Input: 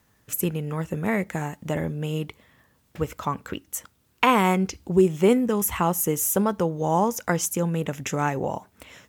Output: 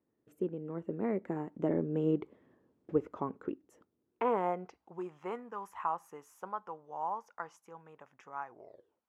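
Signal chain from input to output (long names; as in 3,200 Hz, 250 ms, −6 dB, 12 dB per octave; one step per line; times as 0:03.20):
turntable brake at the end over 0.76 s
source passing by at 0:02.28, 14 m/s, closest 9.3 metres
dynamic equaliser 1,300 Hz, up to +5 dB, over −49 dBFS, Q 1.1
band-pass filter sweep 350 Hz → 1,000 Hz, 0:04.08–0:04.95
level +5 dB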